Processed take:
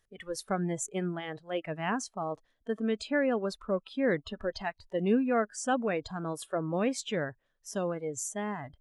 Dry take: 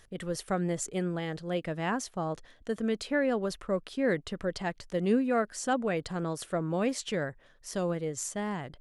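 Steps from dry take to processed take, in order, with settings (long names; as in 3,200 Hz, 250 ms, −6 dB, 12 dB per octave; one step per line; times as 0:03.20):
noise reduction from a noise print of the clip's start 17 dB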